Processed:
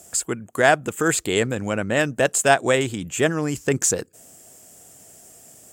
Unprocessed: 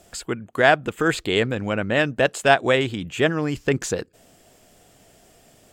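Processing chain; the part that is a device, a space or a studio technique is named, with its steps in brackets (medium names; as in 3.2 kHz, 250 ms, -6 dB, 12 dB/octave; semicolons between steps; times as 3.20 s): budget condenser microphone (high-pass 66 Hz; resonant high shelf 5.4 kHz +10.5 dB, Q 1.5)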